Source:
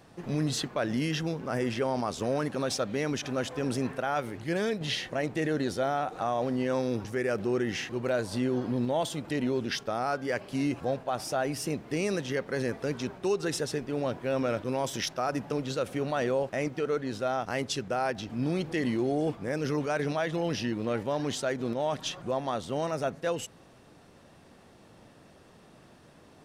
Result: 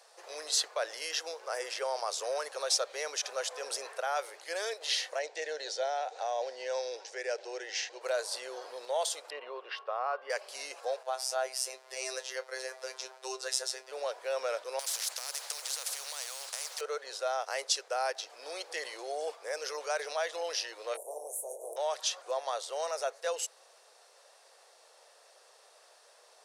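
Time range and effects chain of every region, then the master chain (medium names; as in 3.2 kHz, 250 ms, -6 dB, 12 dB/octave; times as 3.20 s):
5.19–8.01 s: low-pass 7 kHz 24 dB/octave + peaking EQ 1.2 kHz -14.5 dB 0.31 oct
9.30–10.30 s: distance through air 470 m + small resonant body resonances 1.1/2.8 kHz, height 15 dB, ringing for 40 ms
11.03–13.92 s: robot voice 130 Hz + doubling 26 ms -13.5 dB
14.79–16.81 s: compression, threshold -31 dBFS + modulation noise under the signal 34 dB + spectrum-flattening compressor 4:1
20.93–21.76 s: spectral peaks clipped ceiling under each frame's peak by 25 dB + inverse Chebyshev band-stop 1.3–4.9 kHz, stop band 50 dB + doubling 20 ms -6.5 dB
whole clip: steep high-pass 470 Hz 48 dB/octave; high-order bell 6.7 kHz +8.5 dB; trim -2.5 dB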